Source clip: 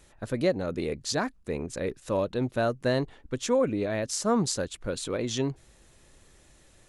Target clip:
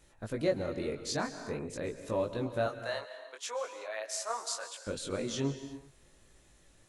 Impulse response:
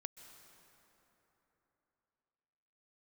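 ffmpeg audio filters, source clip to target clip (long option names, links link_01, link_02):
-filter_complex "[0:a]asettb=1/sr,asplit=3[link_01][link_02][link_03];[link_01]atrim=end=2.664[link_04];[link_02]atrim=start=2.66:end=4.87,asetpts=PTS-STARTPTS,afade=type=in:duration=0.004:curve=qsin,afade=type=out:start_time=2.206:duration=0.004:curve=qsin,highpass=frequency=660:width=0.5412,highpass=frequency=660:width=1.3066[link_05];[link_03]atrim=start=4.866[link_06];[link_04][link_05]acrossfade=duration=0.004:curve1=hsin:curve2=qsin[link_07];[link_07][link_06]acrossfade=duration=0.004:curve1=qsin:curve2=hsin,flanger=delay=17.5:depth=4.3:speed=0.46[link_08];[1:a]atrim=start_sample=2205,afade=type=out:start_time=0.43:duration=0.01,atrim=end_sample=19404[link_09];[link_08][link_09]afir=irnorm=-1:irlink=0,volume=2.5dB"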